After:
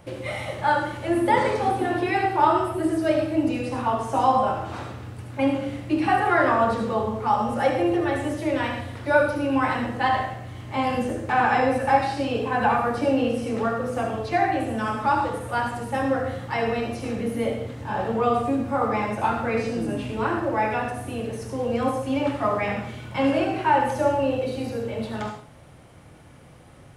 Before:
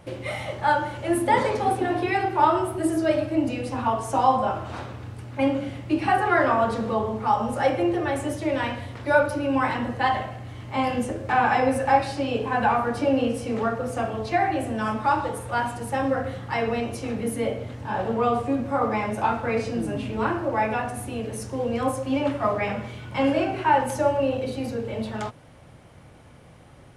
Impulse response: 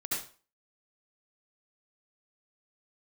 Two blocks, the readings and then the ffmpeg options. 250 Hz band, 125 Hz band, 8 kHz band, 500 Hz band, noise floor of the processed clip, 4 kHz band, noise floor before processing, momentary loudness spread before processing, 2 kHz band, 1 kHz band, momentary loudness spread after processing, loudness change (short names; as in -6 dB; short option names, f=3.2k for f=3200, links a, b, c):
+1.0 dB, +0.5 dB, -4.0 dB, +0.5 dB, -47 dBFS, +0.5 dB, -49 dBFS, 10 LU, +1.0 dB, +0.5 dB, 10 LU, +0.5 dB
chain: -filter_complex "[0:a]acrossover=split=5600[a][b];[b]acompressor=threshold=-50dB:ratio=4:attack=1:release=60[c];[a][c]amix=inputs=2:normalize=0,asplit=2[d][e];[e]highshelf=f=8.4k:g=11.5[f];[1:a]atrim=start_sample=2205[g];[f][g]afir=irnorm=-1:irlink=0,volume=-8.5dB[h];[d][h]amix=inputs=2:normalize=0,volume=-2dB"